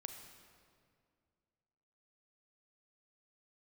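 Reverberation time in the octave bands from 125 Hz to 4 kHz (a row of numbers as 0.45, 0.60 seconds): 2.6, 2.5, 2.4, 2.0, 1.8, 1.5 seconds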